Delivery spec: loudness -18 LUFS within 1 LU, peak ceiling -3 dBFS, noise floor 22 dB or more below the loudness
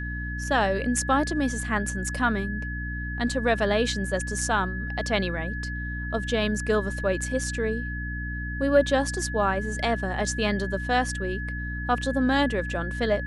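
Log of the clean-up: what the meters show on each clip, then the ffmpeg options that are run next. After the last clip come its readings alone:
hum 60 Hz; harmonics up to 300 Hz; hum level -30 dBFS; steady tone 1700 Hz; tone level -34 dBFS; loudness -26.5 LUFS; peak -7.5 dBFS; loudness target -18.0 LUFS
-> -af "bandreject=f=60:t=h:w=6,bandreject=f=120:t=h:w=6,bandreject=f=180:t=h:w=6,bandreject=f=240:t=h:w=6,bandreject=f=300:t=h:w=6"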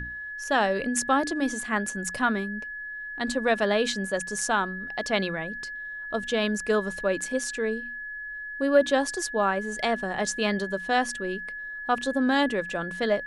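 hum none; steady tone 1700 Hz; tone level -34 dBFS
-> -af "bandreject=f=1.7k:w=30"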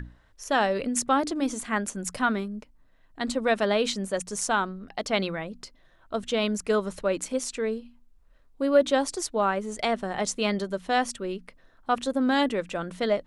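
steady tone none; loudness -27.0 LUFS; peak -8.5 dBFS; loudness target -18.0 LUFS
-> -af "volume=9dB,alimiter=limit=-3dB:level=0:latency=1"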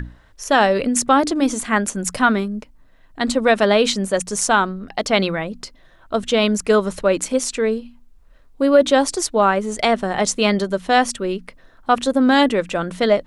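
loudness -18.5 LUFS; peak -3.0 dBFS; noise floor -50 dBFS

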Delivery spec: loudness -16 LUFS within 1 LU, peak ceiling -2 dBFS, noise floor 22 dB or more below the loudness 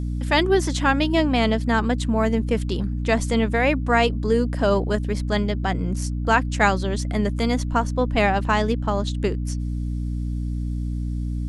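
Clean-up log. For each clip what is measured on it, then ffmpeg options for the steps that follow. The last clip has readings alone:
hum 60 Hz; harmonics up to 300 Hz; hum level -23 dBFS; loudness -22.5 LUFS; peak -4.0 dBFS; loudness target -16.0 LUFS
-> -af "bandreject=f=60:t=h:w=4,bandreject=f=120:t=h:w=4,bandreject=f=180:t=h:w=4,bandreject=f=240:t=h:w=4,bandreject=f=300:t=h:w=4"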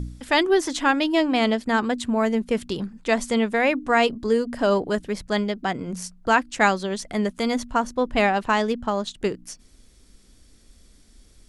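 hum none; loudness -23.0 LUFS; peak -4.5 dBFS; loudness target -16.0 LUFS
-> -af "volume=7dB,alimiter=limit=-2dB:level=0:latency=1"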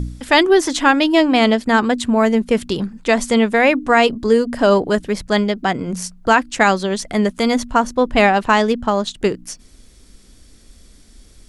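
loudness -16.5 LUFS; peak -2.0 dBFS; noise floor -47 dBFS

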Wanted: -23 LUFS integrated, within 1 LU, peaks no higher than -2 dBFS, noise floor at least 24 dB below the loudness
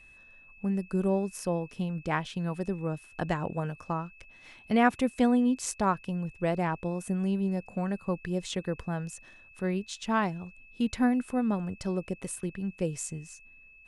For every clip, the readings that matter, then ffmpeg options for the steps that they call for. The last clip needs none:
steady tone 2600 Hz; tone level -53 dBFS; loudness -30.5 LUFS; peak -12.0 dBFS; loudness target -23.0 LUFS
-> -af "bandreject=f=2.6k:w=30"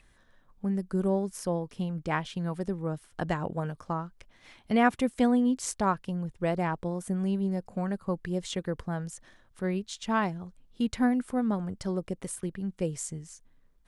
steady tone none; loudness -30.5 LUFS; peak -12.0 dBFS; loudness target -23.0 LUFS
-> -af "volume=7.5dB"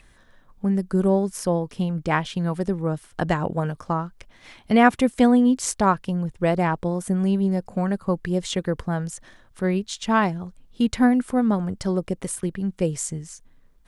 loudness -23.0 LUFS; peak -4.5 dBFS; noise floor -55 dBFS

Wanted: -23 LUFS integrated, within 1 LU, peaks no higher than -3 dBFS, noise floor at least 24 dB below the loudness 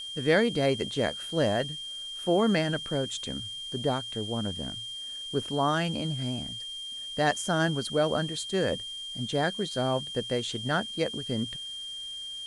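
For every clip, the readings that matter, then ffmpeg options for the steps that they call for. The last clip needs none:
steady tone 3200 Hz; tone level -36 dBFS; noise floor -39 dBFS; noise floor target -54 dBFS; loudness -29.5 LUFS; peak -11.0 dBFS; loudness target -23.0 LUFS
-> -af "bandreject=f=3.2k:w=30"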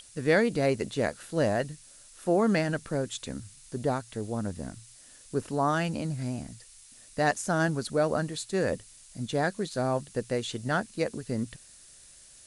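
steady tone none; noise floor -53 dBFS; noise floor target -54 dBFS
-> -af "afftdn=nr=6:nf=-53"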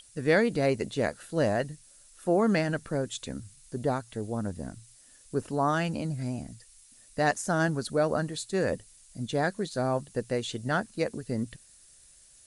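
noise floor -57 dBFS; loudness -29.5 LUFS; peak -11.5 dBFS; loudness target -23.0 LUFS
-> -af "volume=6.5dB"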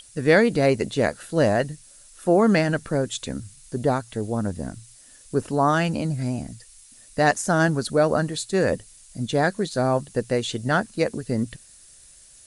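loudness -23.0 LUFS; peak -5.0 dBFS; noise floor -50 dBFS

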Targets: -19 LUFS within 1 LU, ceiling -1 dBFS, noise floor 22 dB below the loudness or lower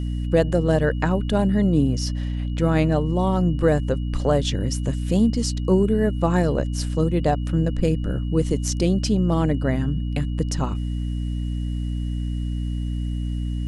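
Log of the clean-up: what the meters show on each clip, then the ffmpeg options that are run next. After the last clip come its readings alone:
hum 60 Hz; harmonics up to 300 Hz; hum level -23 dBFS; steady tone 2900 Hz; tone level -49 dBFS; loudness -22.5 LUFS; peak -5.5 dBFS; loudness target -19.0 LUFS
-> -af "bandreject=f=60:t=h:w=4,bandreject=f=120:t=h:w=4,bandreject=f=180:t=h:w=4,bandreject=f=240:t=h:w=4,bandreject=f=300:t=h:w=4"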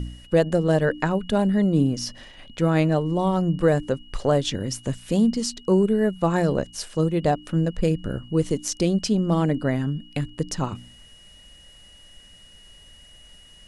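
hum none; steady tone 2900 Hz; tone level -49 dBFS
-> -af "bandreject=f=2.9k:w=30"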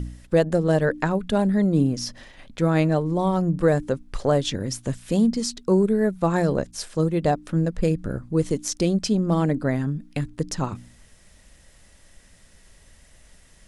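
steady tone none; loudness -23.5 LUFS; peak -7.0 dBFS; loudness target -19.0 LUFS
-> -af "volume=4.5dB"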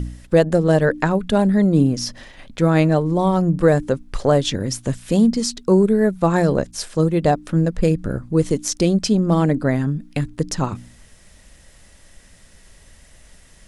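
loudness -19.0 LUFS; peak -2.5 dBFS; noise floor -49 dBFS

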